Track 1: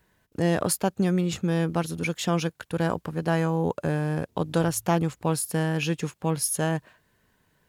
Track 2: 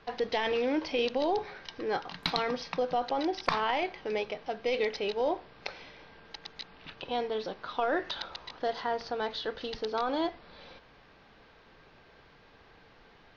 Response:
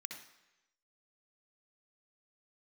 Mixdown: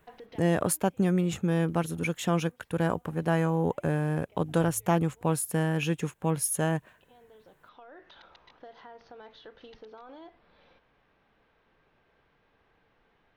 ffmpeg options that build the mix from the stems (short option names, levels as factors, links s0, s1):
-filter_complex "[0:a]volume=0.841,asplit=2[s0][s1];[1:a]alimiter=limit=0.0668:level=0:latency=1:release=20,acompressor=threshold=0.02:ratio=6,volume=0.316[s2];[s1]apad=whole_len=589610[s3];[s2][s3]sidechaincompress=threshold=0.0141:ratio=6:attack=10:release=1440[s4];[s0][s4]amix=inputs=2:normalize=0,equalizer=f=4700:w=2.1:g=-10"